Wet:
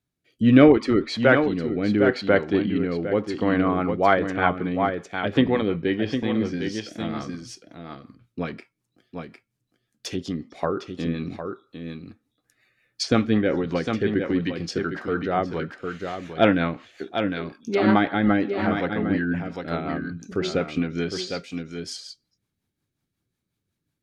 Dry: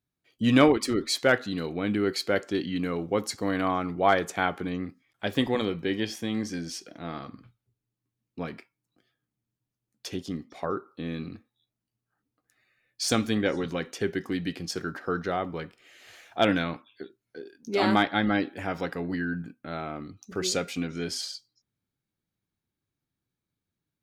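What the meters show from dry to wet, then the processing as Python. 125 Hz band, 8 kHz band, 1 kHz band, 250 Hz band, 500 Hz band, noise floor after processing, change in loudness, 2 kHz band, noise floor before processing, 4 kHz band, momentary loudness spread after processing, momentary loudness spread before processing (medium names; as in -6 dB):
+6.5 dB, -5.5 dB, +3.5 dB, +6.5 dB, +6.0 dB, -81 dBFS, +5.0 dB, +4.0 dB, under -85 dBFS, -0.5 dB, 17 LU, 15 LU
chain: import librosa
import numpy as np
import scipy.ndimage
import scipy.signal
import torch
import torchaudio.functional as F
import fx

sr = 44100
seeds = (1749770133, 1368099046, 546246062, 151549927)

y = x + 10.0 ** (-7.0 / 20.0) * np.pad(x, (int(756 * sr / 1000.0), 0))[:len(x)]
y = fx.env_lowpass_down(y, sr, base_hz=2500.0, full_db=-25.5)
y = fx.rotary_switch(y, sr, hz=0.75, then_hz=5.5, switch_at_s=3.25)
y = y * librosa.db_to_amplitude(7.0)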